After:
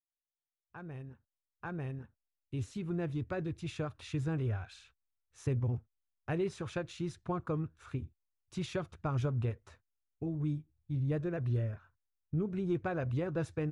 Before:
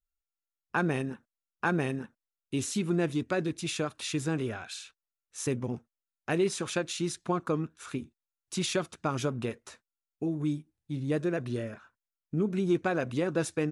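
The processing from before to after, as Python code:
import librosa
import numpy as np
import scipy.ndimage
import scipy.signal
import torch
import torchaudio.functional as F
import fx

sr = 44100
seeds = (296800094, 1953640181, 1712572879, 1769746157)

y = fx.fade_in_head(x, sr, length_s=3.8)
y = fx.lowpass(y, sr, hz=1600.0, slope=6)
y = fx.low_shelf_res(y, sr, hz=140.0, db=14.0, q=1.5)
y = F.gain(torch.from_numpy(y), -5.0).numpy()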